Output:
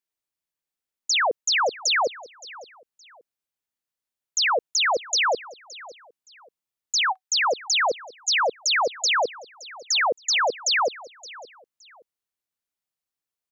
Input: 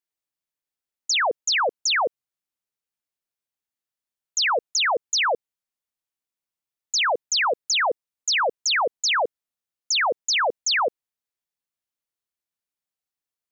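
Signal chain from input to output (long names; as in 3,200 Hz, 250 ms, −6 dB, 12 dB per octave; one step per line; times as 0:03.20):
0:07.01–0:07.44: Chebyshev high-pass filter 750 Hz, order 10
repeating echo 569 ms, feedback 29%, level −19.5 dB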